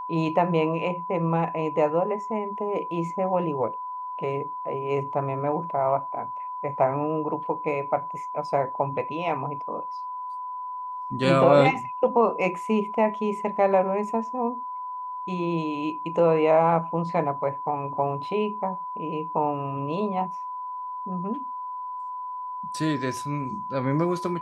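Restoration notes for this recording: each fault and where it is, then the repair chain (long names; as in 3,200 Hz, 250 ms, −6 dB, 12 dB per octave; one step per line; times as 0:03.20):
whistle 1,000 Hz −31 dBFS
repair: notch filter 1,000 Hz, Q 30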